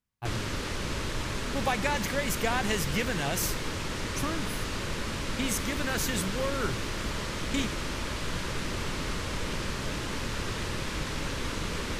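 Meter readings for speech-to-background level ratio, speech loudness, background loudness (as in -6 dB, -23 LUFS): 1.0 dB, -32.5 LUFS, -33.5 LUFS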